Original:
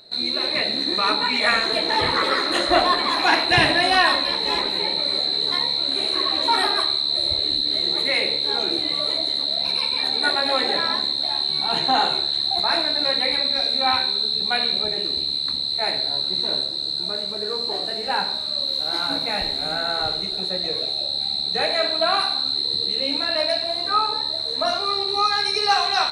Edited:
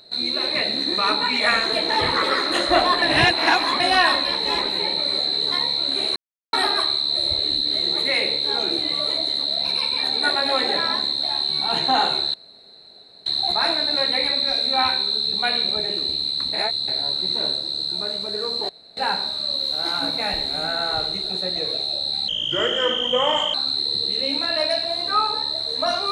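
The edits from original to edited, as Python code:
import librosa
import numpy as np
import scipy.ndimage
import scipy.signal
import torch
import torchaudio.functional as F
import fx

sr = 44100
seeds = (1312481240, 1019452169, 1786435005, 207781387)

y = fx.edit(x, sr, fx.reverse_span(start_s=3.02, length_s=0.78),
    fx.silence(start_s=6.16, length_s=0.37),
    fx.insert_room_tone(at_s=12.34, length_s=0.92),
    fx.reverse_span(start_s=15.61, length_s=0.35),
    fx.room_tone_fill(start_s=17.77, length_s=0.28),
    fx.speed_span(start_s=21.36, length_s=0.97, speed=0.77), tone=tone)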